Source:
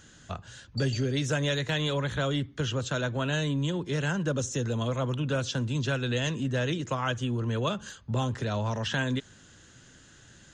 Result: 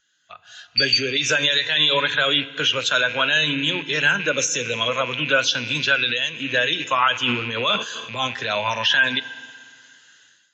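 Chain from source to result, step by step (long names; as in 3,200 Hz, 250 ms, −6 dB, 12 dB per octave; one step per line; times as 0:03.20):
loose part that buzzes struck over −34 dBFS, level −32 dBFS
feedback delay network reverb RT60 2.7 s, high-frequency decay 0.95×, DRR 10.5 dB
automatic gain control gain up to 11 dB
first difference
0:06.07–0:06.51: downward compressor 10 to 1, threshold −32 dBFS, peak gain reduction 9 dB
0:07.23–0:08.27: transient designer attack −7 dB, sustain +7 dB
high-frequency loss of the air 180 metres
gate on every frequency bin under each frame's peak −30 dB strong
boost into a limiter +26 dB
every bin expanded away from the loudest bin 1.5 to 1
level −5.5 dB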